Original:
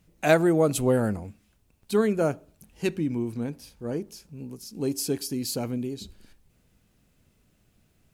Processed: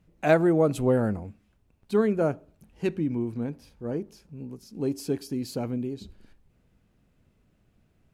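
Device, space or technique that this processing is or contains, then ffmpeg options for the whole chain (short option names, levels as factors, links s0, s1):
through cloth: -af "highshelf=f=3600:g=-13.5"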